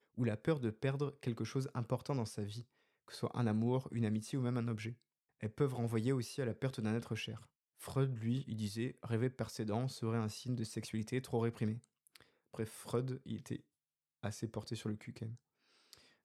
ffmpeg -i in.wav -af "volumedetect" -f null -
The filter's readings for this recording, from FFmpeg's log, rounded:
mean_volume: -39.4 dB
max_volume: -21.1 dB